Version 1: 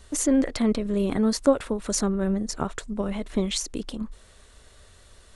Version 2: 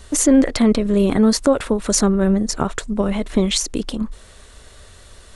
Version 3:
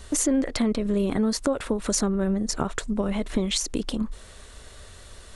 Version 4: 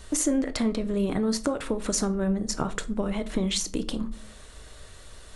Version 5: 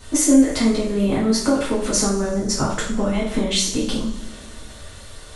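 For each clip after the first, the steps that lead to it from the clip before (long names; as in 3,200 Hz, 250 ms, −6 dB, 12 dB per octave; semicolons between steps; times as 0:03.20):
boost into a limiter +12.5 dB; level −4 dB
downward compressor 2.5 to 1, threshold −22 dBFS, peak gain reduction 9 dB; level −1.5 dB
rectangular room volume 330 cubic metres, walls furnished, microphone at 0.54 metres; level −2 dB
coupled-rooms reverb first 0.46 s, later 2.6 s, from −20 dB, DRR −8.5 dB; level −1 dB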